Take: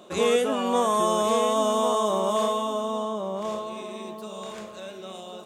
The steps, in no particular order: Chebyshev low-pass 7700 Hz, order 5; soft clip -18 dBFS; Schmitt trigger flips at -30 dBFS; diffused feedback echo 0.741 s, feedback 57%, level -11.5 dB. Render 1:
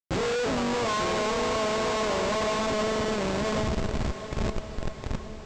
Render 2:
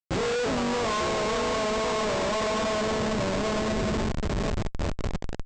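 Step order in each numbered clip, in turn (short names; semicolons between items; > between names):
Schmitt trigger > Chebyshev low-pass > soft clip > diffused feedback echo; diffused feedback echo > Schmitt trigger > soft clip > Chebyshev low-pass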